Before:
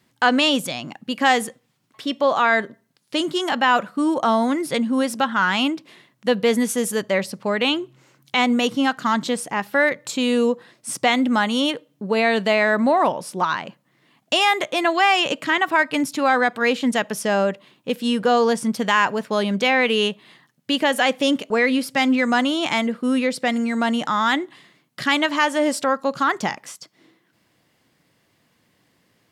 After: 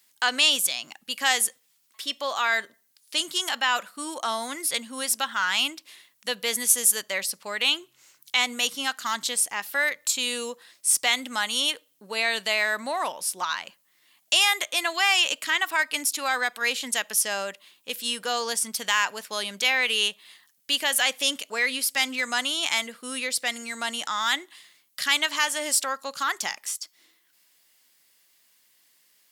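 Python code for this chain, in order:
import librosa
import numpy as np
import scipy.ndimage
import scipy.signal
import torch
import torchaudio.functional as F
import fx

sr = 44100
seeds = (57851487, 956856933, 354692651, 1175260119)

y = fx.tilt_eq(x, sr, slope=5.5)
y = y * librosa.db_to_amplitude(-8.5)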